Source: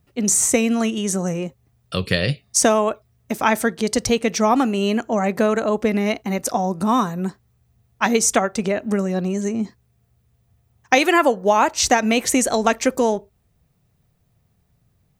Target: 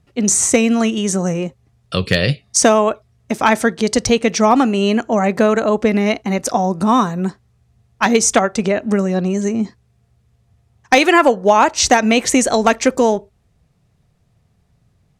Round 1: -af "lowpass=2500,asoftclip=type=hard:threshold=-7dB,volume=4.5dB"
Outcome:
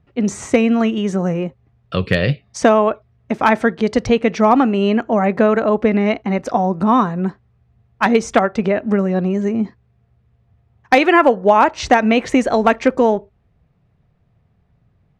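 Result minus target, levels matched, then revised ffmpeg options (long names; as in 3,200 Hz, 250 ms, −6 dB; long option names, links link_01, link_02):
8,000 Hz band −16.0 dB
-af "lowpass=8400,asoftclip=type=hard:threshold=-7dB,volume=4.5dB"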